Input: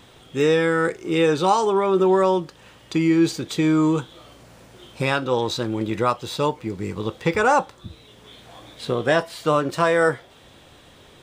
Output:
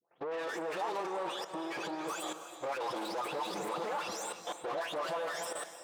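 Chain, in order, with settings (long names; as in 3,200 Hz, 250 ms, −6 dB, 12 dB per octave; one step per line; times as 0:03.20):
every frequency bin delayed by itself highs late, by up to 727 ms
compressor whose output falls as the input rises −26 dBFS, ratio −1
tube saturation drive 34 dB, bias 0.4
phase-vocoder stretch with locked phases 0.52×
high-pass filter 200 Hz 12 dB per octave
low-shelf EQ 290 Hz −9 dB
tape delay 287 ms, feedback 87%, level −14.5 dB, low-pass 4,300 Hz
noise gate −45 dBFS, range −25 dB
output level in coarse steps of 16 dB
parametric band 760 Hz +11 dB 1.6 octaves
reverb whose tail is shaped and stops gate 350 ms rising, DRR 9.5 dB
level +5 dB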